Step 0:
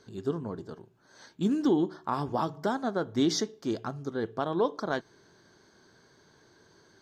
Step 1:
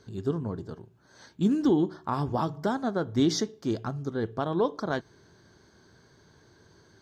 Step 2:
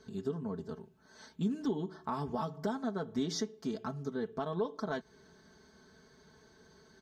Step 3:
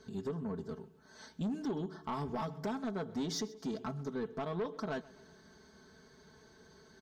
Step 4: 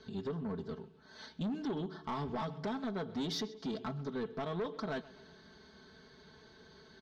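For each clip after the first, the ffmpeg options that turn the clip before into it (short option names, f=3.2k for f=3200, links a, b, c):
-af "equalizer=f=69:t=o:w=2.3:g=10.5"
-af "aecho=1:1:4.6:0.8,acompressor=threshold=-32dB:ratio=2,volume=-4dB"
-af "asoftclip=type=tanh:threshold=-31.5dB,aecho=1:1:130|260|390:0.0891|0.0428|0.0205,volume=1dB"
-filter_complex "[0:a]acrossover=split=1000[a][b];[b]acrusher=bits=4:mode=log:mix=0:aa=0.000001[c];[a][c]amix=inputs=2:normalize=0,lowpass=f=3.8k:t=q:w=1.9,asoftclip=type=tanh:threshold=-30.5dB,volume=1dB"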